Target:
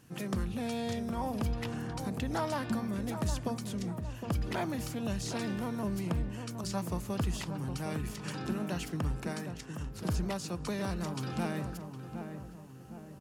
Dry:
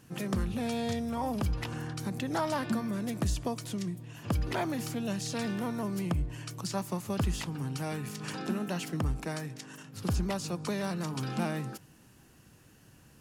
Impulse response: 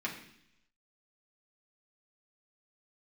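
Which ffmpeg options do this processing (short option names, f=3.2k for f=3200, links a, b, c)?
-filter_complex "[0:a]asplit=2[a][b];[b]adelay=762,lowpass=f=1.3k:p=1,volume=-7dB,asplit=2[c][d];[d]adelay=762,lowpass=f=1.3k:p=1,volume=0.5,asplit=2[e][f];[f]adelay=762,lowpass=f=1.3k:p=1,volume=0.5,asplit=2[g][h];[h]adelay=762,lowpass=f=1.3k:p=1,volume=0.5,asplit=2[i][j];[j]adelay=762,lowpass=f=1.3k:p=1,volume=0.5,asplit=2[k][l];[l]adelay=762,lowpass=f=1.3k:p=1,volume=0.5[m];[a][c][e][g][i][k][m]amix=inputs=7:normalize=0,volume=-2.5dB"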